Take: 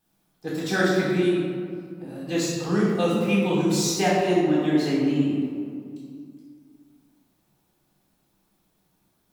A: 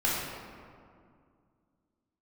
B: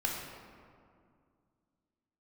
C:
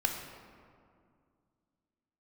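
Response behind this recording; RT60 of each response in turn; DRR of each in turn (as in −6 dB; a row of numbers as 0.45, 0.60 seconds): A; 2.2, 2.2, 2.2 seconds; −6.5, −1.5, 2.5 decibels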